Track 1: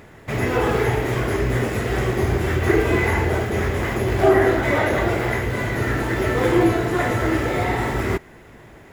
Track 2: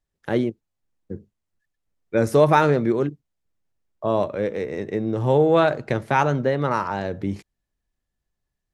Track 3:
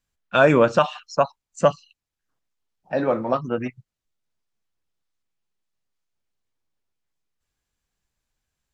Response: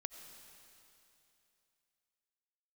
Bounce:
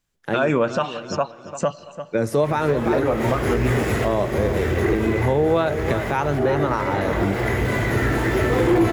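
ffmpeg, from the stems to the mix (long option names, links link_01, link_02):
-filter_complex "[0:a]acrossover=split=480[link_01][link_02];[link_02]acompressor=threshold=-24dB:ratio=6[link_03];[link_01][link_03]amix=inputs=2:normalize=0,asoftclip=type=tanh:threshold=-13.5dB,adelay=2150,volume=0.5dB,asplit=2[link_04][link_05];[link_05]volume=-5dB[link_06];[1:a]highpass=frequency=92:width=0.5412,highpass=frequency=92:width=1.3066,volume=1.5dB,asplit=3[link_07][link_08][link_09];[link_08]volume=-11.5dB[link_10];[2:a]volume=2.5dB,asplit=3[link_11][link_12][link_13];[link_12]volume=-14.5dB[link_14];[link_13]volume=-19dB[link_15];[link_09]apad=whole_len=488514[link_16];[link_04][link_16]sidechaincompress=threshold=-26dB:ratio=8:attack=5.2:release=287[link_17];[3:a]atrim=start_sample=2205[link_18];[link_06][link_14]amix=inputs=2:normalize=0[link_19];[link_19][link_18]afir=irnorm=-1:irlink=0[link_20];[link_10][link_15]amix=inputs=2:normalize=0,aecho=0:1:343|686|1029|1372|1715:1|0.34|0.116|0.0393|0.0134[link_21];[link_17][link_07][link_11][link_20][link_21]amix=inputs=5:normalize=0,alimiter=limit=-10dB:level=0:latency=1:release=193"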